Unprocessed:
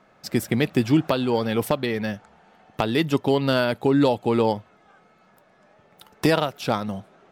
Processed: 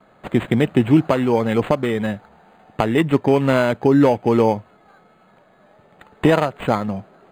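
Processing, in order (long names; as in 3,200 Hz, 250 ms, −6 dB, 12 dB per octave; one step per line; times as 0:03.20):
noise gate with hold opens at −51 dBFS
linearly interpolated sample-rate reduction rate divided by 8×
level +5 dB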